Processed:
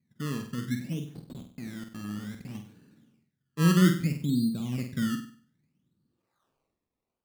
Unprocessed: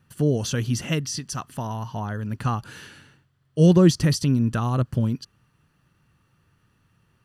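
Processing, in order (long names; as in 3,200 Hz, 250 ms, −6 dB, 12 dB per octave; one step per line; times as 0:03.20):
0:01.15–0:02.55: comparator with hysteresis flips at −27 dBFS
band-pass filter sweep 220 Hz → 7,100 Hz, 0:06.04–0:06.78
automatic gain control gain up to 4 dB
sample-and-hold swept by an LFO 20×, swing 100% 0.62 Hz
on a send: flutter between parallel walls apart 8.3 metres, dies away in 0.45 s
on the sum: level −6.5 dB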